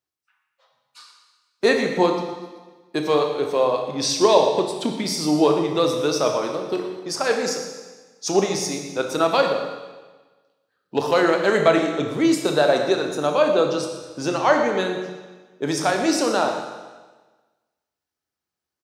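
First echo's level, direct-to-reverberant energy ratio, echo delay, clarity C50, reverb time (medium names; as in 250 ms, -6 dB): -13.5 dB, 2.5 dB, 119 ms, 4.5 dB, 1.3 s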